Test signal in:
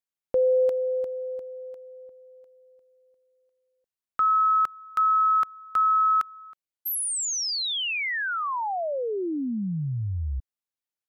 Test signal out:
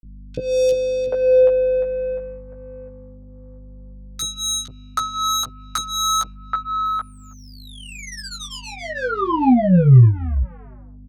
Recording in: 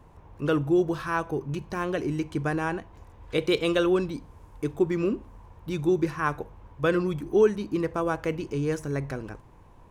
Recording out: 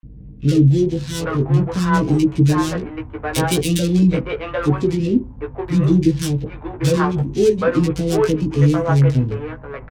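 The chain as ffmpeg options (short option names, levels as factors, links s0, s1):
-filter_complex "[0:a]equalizer=f=110:w=0.38:g=12,bandreject=f=370:w=12,acrossover=split=580|1100[s0][s1][s2];[s2]acompressor=threshold=0.0112:ratio=4:attack=69:release=61:knee=6:detection=peak[s3];[s0][s1][s3]amix=inputs=3:normalize=0,aeval=exprs='val(0)+0.00794*(sin(2*PI*50*n/s)+sin(2*PI*2*50*n/s)/2+sin(2*PI*3*50*n/s)/3+sin(2*PI*4*50*n/s)/4+sin(2*PI*5*50*n/s)/5)':c=same,flanger=delay=6.3:depth=1.8:regen=-16:speed=0.49:shape=sinusoidal,adynamicsmooth=sensitivity=4.5:basefreq=600,crystalizer=i=3.5:c=0,asplit=2[s4][s5];[s5]adelay=16,volume=0.668[s6];[s4][s6]amix=inputs=2:normalize=0,acrossover=split=470|2300[s7][s8][s9];[s7]adelay=30[s10];[s8]adelay=780[s11];[s10][s11][s9]amix=inputs=3:normalize=0,adynamicequalizer=threshold=0.00562:dfrequency=4400:dqfactor=0.7:tfrequency=4400:tqfactor=0.7:attack=5:release=100:ratio=0.375:range=2.5:mode=boostabove:tftype=highshelf,volume=2.37"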